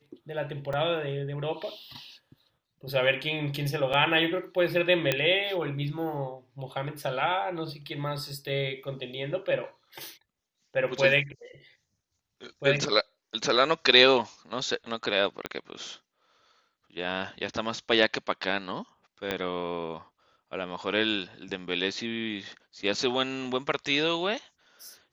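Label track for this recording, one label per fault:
0.730000	0.730000	dropout 4.7 ms
3.930000	3.940000	dropout 6.2 ms
5.120000	5.120000	pop -9 dBFS
15.460000	15.460000	pop -15 dBFS
19.310000	19.310000	pop -14 dBFS

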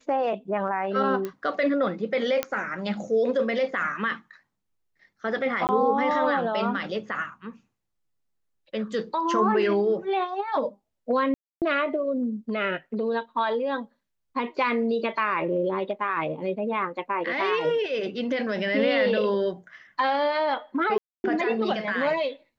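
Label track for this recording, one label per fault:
1.250000	1.250000	pop -18 dBFS
2.430000	2.430000	pop -10 dBFS
5.670000	5.690000	dropout 19 ms
11.340000	11.620000	dropout 278 ms
20.980000	21.240000	dropout 261 ms

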